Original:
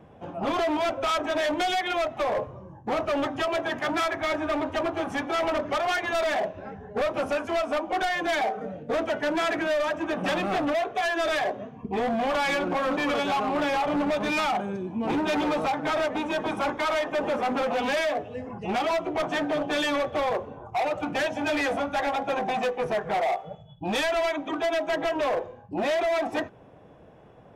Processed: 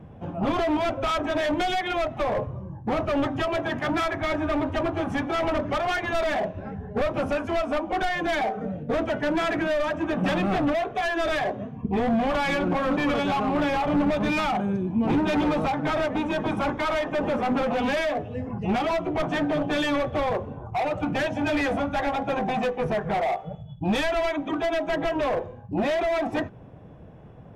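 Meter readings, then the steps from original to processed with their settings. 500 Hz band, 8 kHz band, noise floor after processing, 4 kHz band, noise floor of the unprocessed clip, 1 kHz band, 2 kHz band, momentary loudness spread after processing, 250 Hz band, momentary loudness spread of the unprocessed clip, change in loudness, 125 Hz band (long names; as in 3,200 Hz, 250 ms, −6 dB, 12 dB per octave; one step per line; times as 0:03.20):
+0.5 dB, −3.5 dB, −43 dBFS, −1.5 dB, −50 dBFS, 0.0 dB, 0.0 dB, 5 LU, +4.5 dB, 5 LU, +1.0 dB, +9.5 dB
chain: bass and treble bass +11 dB, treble −4 dB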